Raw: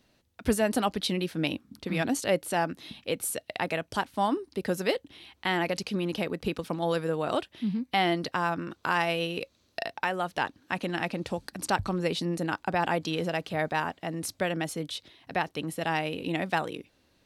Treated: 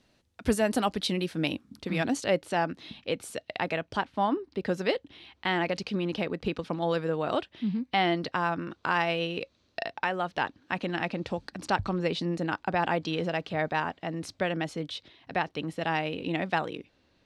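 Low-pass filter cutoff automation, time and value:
0:01.80 10,000 Hz
0:02.43 5,300 Hz
0:03.63 5,300 Hz
0:04.37 2,900 Hz
0:04.71 4,900 Hz

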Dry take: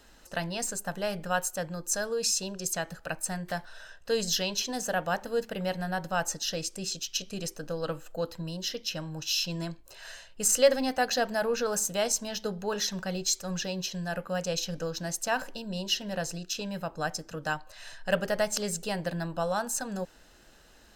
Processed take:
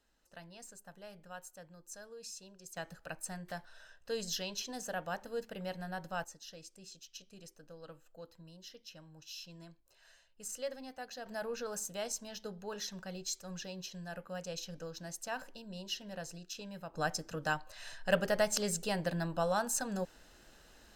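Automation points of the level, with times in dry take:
−19.5 dB
from 0:02.77 −9.5 dB
from 0:06.24 −18.5 dB
from 0:11.26 −11 dB
from 0:16.94 −2.5 dB

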